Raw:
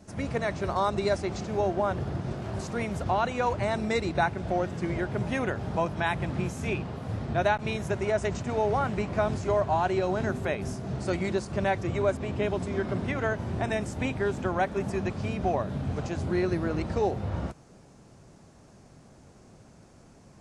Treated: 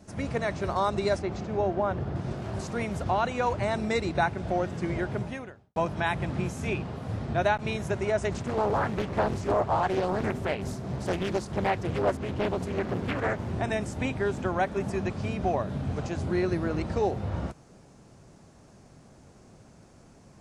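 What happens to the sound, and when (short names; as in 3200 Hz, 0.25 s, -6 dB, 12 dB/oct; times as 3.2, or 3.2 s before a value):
1.19–2.16 LPF 2500 Hz 6 dB/oct
5.13–5.76 fade out quadratic
8.32–13.51 Doppler distortion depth 0.8 ms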